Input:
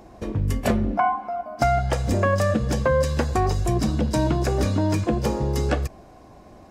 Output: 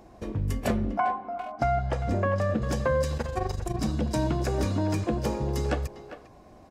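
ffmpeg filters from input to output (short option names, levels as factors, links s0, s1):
-filter_complex "[0:a]asettb=1/sr,asplit=3[s0][s1][s2];[s0]atrim=end=1.134[s3];[s1]atrim=start=1.13:end=2.62,asetpts=PTS-STARTPTS,afade=t=in:d=0.004:c=qsin,afade=t=out:st=1.486:d=0.004:c=qsin,aemphasis=mode=reproduction:type=75kf[s4];[s2]atrim=start=2.616[s5];[s3][s4]acrossfade=d=0.004:c1=hsin:c2=qsin[s6];[s6][s5]acrossfade=d=0.004:c1=qsin:c2=hsin,asettb=1/sr,asplit=3[s7][s8][s9];[s7]atrim=end=3.174[s10];[s8]atrim=start=3.17:end=3.81,asetpts=PTS-STARTPTS,afade=t=in:d=0.004:c=qsin,afade=t=out:st=0.636:d=0.004:c=qsin,tremolo=f=24:d=0.824[s11];[s9]atrim=start=3.806[s12];[s10][s11]acrossfade=d=0.004:c1=hsin:c2=qsin[s13];[s13][s12]acrossfade=d=0.004:c1=qsin:c2=hsin,asplit=2[s14][s15];[s15]adelay=400,highpass=300,lowpass=3400,asoftclip=type=hard:threshold=0.141,volume=0.282[s16];[s14][s16]amix=inputs=2:normalize=0,volume=0.562"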